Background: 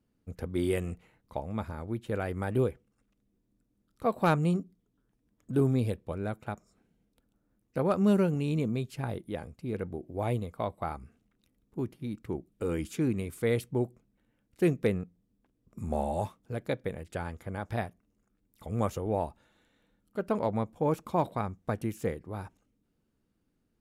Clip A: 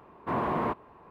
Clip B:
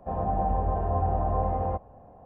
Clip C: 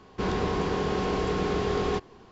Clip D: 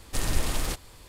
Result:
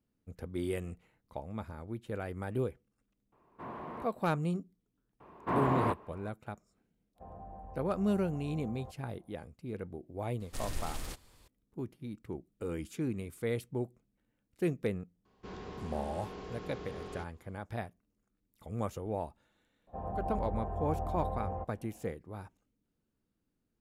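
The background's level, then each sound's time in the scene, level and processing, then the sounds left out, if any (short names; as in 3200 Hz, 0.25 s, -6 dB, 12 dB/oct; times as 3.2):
background -6 dB
3.32 add A -14.5 dB
5.2 add A -1.5 dB
7.14 add B -17 dB, fades 0.05 s + compressor 3:1, threshold -28 dBFS
10.4 add D -12 dB
15.25 add C -17.5 dB
19.87 add B -10 dB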